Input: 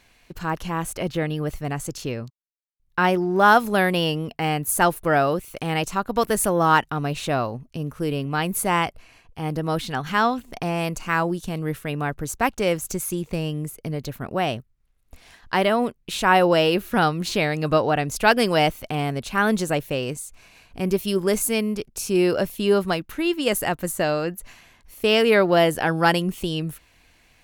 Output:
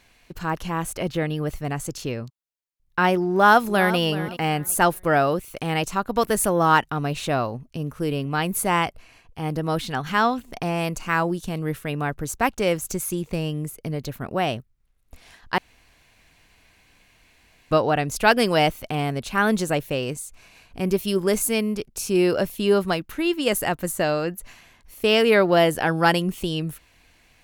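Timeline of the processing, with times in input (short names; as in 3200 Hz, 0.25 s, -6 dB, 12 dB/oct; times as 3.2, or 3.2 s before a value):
3.3–3.98 echo throw 0.38 s, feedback 25%, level -13.5 dB
15.58–17.71 room tone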